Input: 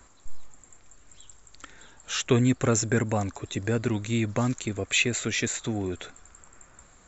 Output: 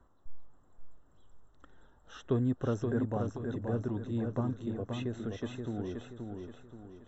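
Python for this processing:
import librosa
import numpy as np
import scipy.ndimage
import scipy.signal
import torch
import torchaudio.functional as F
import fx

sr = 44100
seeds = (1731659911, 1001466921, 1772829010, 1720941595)

p1 = scipy.signal.lfilter(np.full(19, 1.0 / 19), 1.0, x)
p2 = p1 + fx.echo_feedback(p1, sr, ms=527, feedback_pct=40, wet_db=-5.0, dry=0)
y = F.gain(torch.from_numpy(p2), -7.5).numpy()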